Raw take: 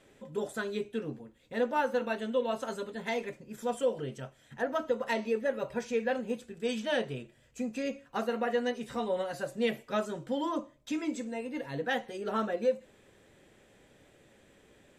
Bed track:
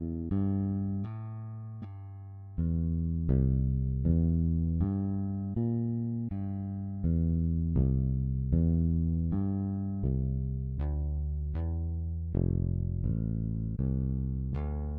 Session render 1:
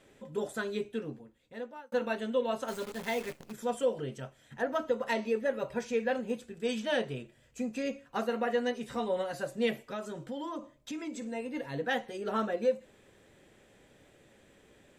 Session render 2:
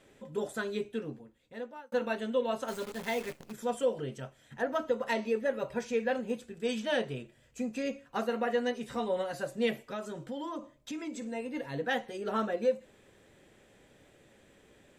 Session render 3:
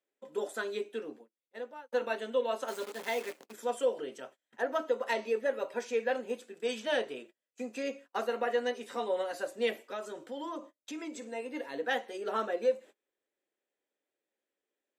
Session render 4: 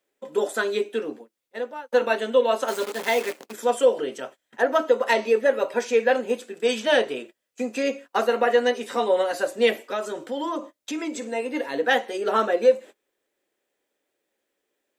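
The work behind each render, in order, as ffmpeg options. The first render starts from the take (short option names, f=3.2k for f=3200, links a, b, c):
-filter_complex "[0:a]asplit=3[a][b][c];[a]afade=t=out:st=2.67:d=0.02[d];[b]acrusher=bits=8:dc=4:mix=0:aa=0.000001,afade=t=in:st=2.67:d=0.02,afade=t=out:st=3.51:d=0.02[e];[c]afade=t=in:st=3.51:d=0.02[f];[d][e][f]amix=inputs=3:normalize=0,asettb=1/sr,asplit=3[g][h][i];[g]atrim=end=9.734[j];[h]atrim=start=9.73:end=11.22,asetpts=PTS-STARTPTS,afade=t=in:d=0.004:c=qsin,afade=t=out:st=1.486:d=0.004:c=qsin,acompressor=threshold=-37dB:ratio=2.5:attack=3.2:release=140:knee=1:detection=peak[k];[i]atrim=start=11.216[l];[j][k]acrossfade=d=0.004:c1=hsin:c2=qsin[m];[m][l]acrossfade=d=0.004:c1=qsin:c2=hsin,asplit=2[n][o];[n]atrim=end=1.92,asetpts=PTS-STARTPTS,afade=t=out:st=0.86:d=1.06[p];[o]atrim=start=1.92,asetpts=PTS-STARTPTS,afade=t=in:d=0.004:c=hsin[q];[p][q]concat=n=2:v=0:a=1"
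-af anull
-af "agate=range=-28dB:threshold=-48dB:ratio=16:detection=peak,highpass=f=290:w=0.5412,highpass=f=290:w=1.3066"
-af "volume=11dB"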